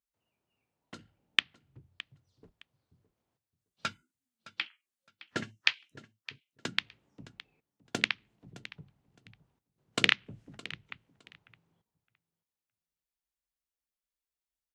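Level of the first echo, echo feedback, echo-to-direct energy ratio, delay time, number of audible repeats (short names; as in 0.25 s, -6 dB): -17.5 dB, 20%, -17.5 dB, 0.614 s, 2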